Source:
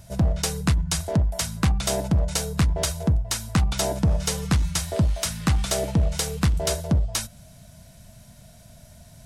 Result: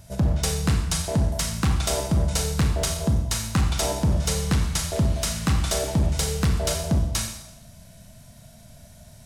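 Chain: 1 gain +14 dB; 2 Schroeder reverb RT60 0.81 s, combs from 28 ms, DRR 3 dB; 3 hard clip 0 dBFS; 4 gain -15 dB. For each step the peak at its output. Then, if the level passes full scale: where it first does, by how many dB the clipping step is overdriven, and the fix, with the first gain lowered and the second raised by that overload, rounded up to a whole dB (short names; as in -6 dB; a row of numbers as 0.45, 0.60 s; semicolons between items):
+4.5, +5.0, 0.0, -15.0 dBFS; step 1, 5.0 dB; step 1 +9 dB, step 4 -10 dB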